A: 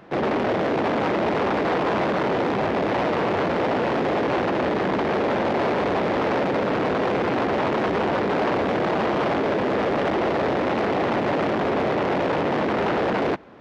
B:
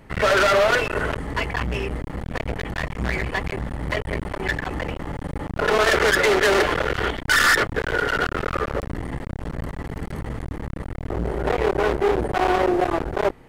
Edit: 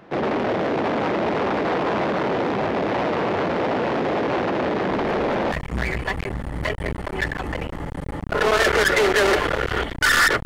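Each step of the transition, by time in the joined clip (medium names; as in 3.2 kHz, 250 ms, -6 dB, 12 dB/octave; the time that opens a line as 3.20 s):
A
4.90 s: add B from 2.17 s 0.62 s -10.5 dB
5.52 s: go over to B from 2.79 s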